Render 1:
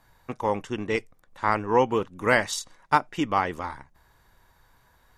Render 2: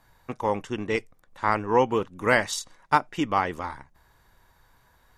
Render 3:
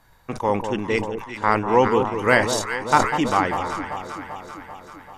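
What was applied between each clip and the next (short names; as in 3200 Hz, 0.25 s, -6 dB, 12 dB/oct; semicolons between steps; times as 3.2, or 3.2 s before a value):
nothing audible
echo with dull and thin repeats by turns 0.195 s, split 1100 Hz, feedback 78%, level -7 dB; sustainer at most 100 dB/s; gain +3.5 dB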